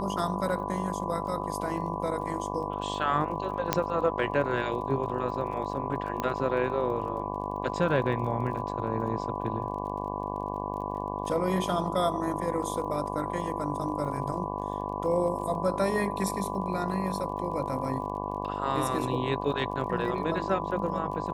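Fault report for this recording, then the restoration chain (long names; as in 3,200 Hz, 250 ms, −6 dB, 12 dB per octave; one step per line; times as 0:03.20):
mains buzz 50 Hz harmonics 23 −35 dBFS
surface crackle 30 per second −40 dBFS
whistle 1,000 Hz −37 dBFS
0:03.73: click −7 dBFS
0:06.20: click −16 dBFS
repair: click removal
notch filter 1,000 Hz, Q 30
hum removal 50 Hz, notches 23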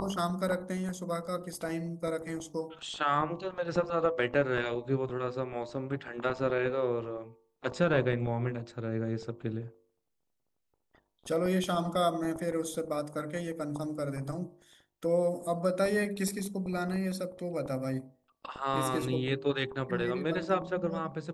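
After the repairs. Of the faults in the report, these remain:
none of them is left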